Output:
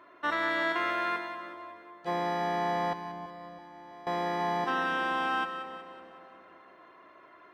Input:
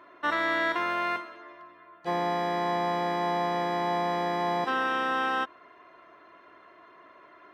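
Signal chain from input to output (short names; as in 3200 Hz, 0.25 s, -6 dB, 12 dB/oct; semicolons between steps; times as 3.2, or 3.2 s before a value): 2.93–4.07 expander -15 dBFS; on a send: split-band echo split 960 Hz, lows 0.327 s, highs 0.185 s, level -9.5 dB; on the sum: gain -2.5 dB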